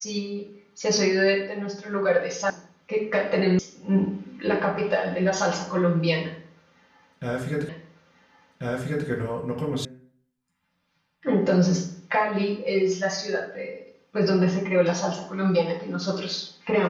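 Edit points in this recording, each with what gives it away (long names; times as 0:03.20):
0:02.50: cut off before it has died away
0:03.59: cut off before it has died away
0:07.69: the same again, the last 1.39 s
0:09.85: cut off before it has died away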